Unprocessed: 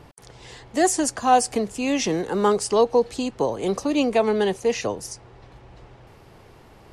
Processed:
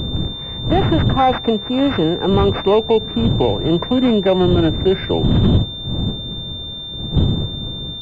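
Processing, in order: speed glide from 110% -> 63%; wind noise 200 Hz -28 dBFS; bell 110 Hz +5.5 dB 1.1 oct; limiter -12 dBFS, peak gain reduction 7 dB; pulse-width modulation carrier 3600 Hz; gain +6.5 dB

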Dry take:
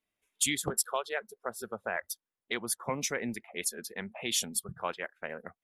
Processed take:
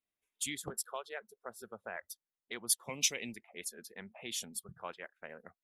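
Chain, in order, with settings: 2.69–3.32 resonant high shelf 2100 Hz +11 dB, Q 3; gain -9 dB

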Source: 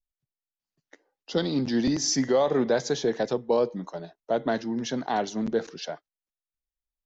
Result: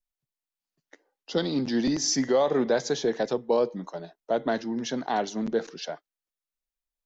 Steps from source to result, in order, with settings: bell 79 Hz -12 dB 0.96 oct

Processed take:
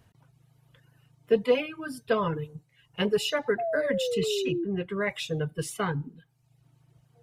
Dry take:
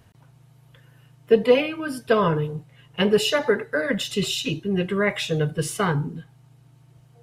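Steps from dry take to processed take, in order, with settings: reverb removal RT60 0.77 s; 4.52–5.01 high shelf 3700 Hz -10 dB; 3.58–4.65 painted sound fall 330–710 Hz -23 dBFS; gain -6 dB

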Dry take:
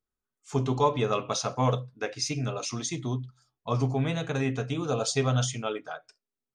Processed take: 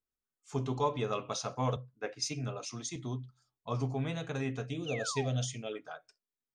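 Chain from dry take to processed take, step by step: 4.67–5.73 band shelf 1100 Hz -13 dB 1 oct; 4.86–5.29 painted sound fall 600–3100 Hz -35 dBFS; 1.76–2.96 three-band expander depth 70%; gain -7 dB

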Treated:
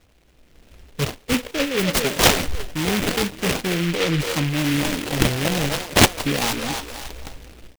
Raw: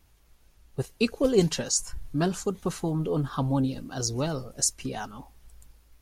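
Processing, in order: band-limited delay 0.214 s, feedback 39%, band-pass 780 Hz, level -6 dB; reverse; compressor 12:1, threshold -32 dBFS, peak gain reduction 17 dB; reverse; speed mistake 44.1 kHz file played as 48 kHz; AGC gain up to 12.5 dB; high shelf 4100 Hz +10.5 dB; tempo 0.71×; on a send at -17 dB: ripple EQ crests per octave 0.94, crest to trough 16 dB + reverb RT60 0.50 s, pre-delay 3 ms; on the sum: decimation with a swept rate 21×, swing 160% 0.42 Hz; noise-modulated delay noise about 2200 Hz, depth 0.22 ms; gain +1 dB

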